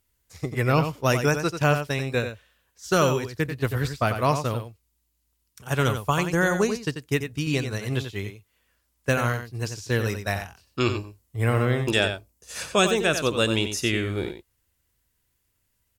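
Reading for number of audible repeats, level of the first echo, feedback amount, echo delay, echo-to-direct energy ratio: 1, −8.5 dB, repeats not evenly spaced, 90 ms, −8.5 dB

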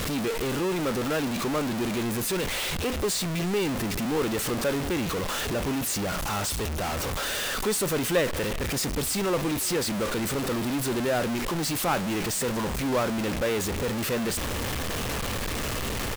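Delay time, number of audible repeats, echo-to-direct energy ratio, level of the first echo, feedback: 361 ms, 1, −22.5 dB, −22.5 dB, repeats not evenly spaced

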